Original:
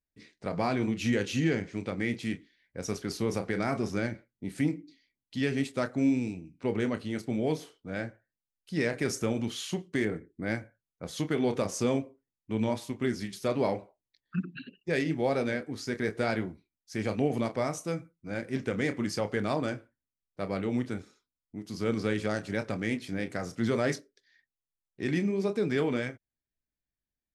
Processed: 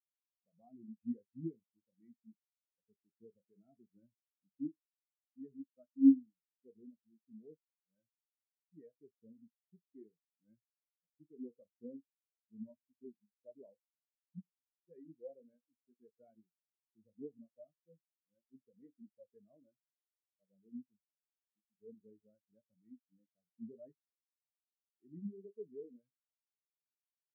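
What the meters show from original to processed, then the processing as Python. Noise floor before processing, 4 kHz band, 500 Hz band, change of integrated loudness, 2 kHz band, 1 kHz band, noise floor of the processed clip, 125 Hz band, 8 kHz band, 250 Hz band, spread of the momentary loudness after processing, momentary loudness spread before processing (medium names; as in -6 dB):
under -85 dBFS, under -40 dB, -25.0 dB, -7.0 dB, under -40 dB, under -40 dB, under -85 dBFS, -26.0 dB, under -35 dB, -9.5 dB, 21 LU, 10 LU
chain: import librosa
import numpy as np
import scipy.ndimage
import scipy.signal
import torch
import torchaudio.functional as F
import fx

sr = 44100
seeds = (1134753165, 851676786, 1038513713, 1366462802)

y = fx.spectral_expand(x, sr, expansion=4.0)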